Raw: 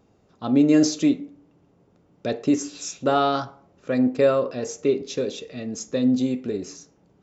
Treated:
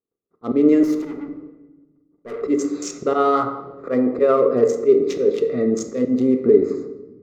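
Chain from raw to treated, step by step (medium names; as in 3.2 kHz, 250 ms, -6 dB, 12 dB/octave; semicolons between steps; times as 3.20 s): local Wiener filter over 15 samples; 3.13–4.37 s: peaking EQ 910 Hz +6.5 dB 2 oct; gate -55 dBFS, range -45 dB; slow attack 182 ms; in parallel at +2.5 dB: compression, threshold -29 dBFS, peak gain reduction 15 dB; on the sum: peak limiter -14.5 dBFS, peak gain reduction 9 dB; 0.83–2.43 s: valve stage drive 37 dB, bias 0.35; small resonant body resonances 410/1200/2000 Hz, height 15 dB, ringing for 20 ms; on a send at -7 dB: reverberation RT60 1.1 s, pre-delay 4 ms; on the sum: trim -2.5 dB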